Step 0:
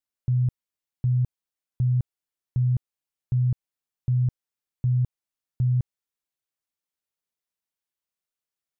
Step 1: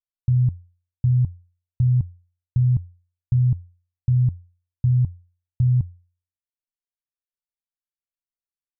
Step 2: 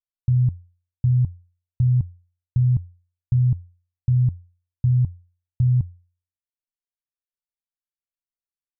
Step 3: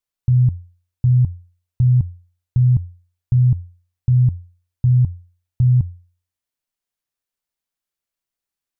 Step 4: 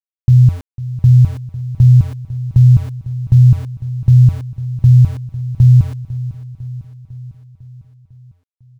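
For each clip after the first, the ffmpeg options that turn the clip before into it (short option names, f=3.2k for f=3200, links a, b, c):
-af "anlmdn=10,equalizer=f=88:w=8:g=12.5,aecho=1:1:1:0.65"
-af anull
-af "alimiter=limit=-18dB:level=0:latency=1:release=66,volume=8.5dB"
-af "aeval=exprs='val(0)*gte(abs(val(0)),0.0178)':c=same,aecho=1:1:501|1002|1503|2004|2505|3006:0.158|0.0951|0.0571|0.0342|0.0205|0.0123,volume=6.5dB"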